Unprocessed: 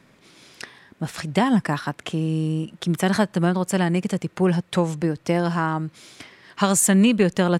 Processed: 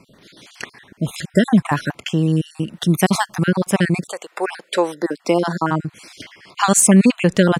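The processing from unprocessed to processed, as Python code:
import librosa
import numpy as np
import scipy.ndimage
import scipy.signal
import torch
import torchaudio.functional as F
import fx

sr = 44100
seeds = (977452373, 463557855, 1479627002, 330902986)

y = fx.spec_dropout(x, sr, seeds[0], share_pct=37)
y = fx.high_shelf(y, sr, hz=fx.line((2.75, 12000.0), (3.43, 6500.0)), db=9.0, at=(2.75, 3.43), fade=0.02)
y = fx.highpass(y, sr, hz=fx.line((4.07, 590.0), (5.7, 170.0)), slope=24, at=(4.07, 5.7), fade=0.02)
y = F.gain(torch.from_numpy(y), 6.5).numpy()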